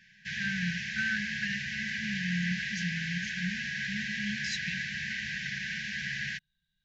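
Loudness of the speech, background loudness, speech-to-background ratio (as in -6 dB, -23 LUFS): -37.0 LUFS, -34.0 LUFS, -3.0 dB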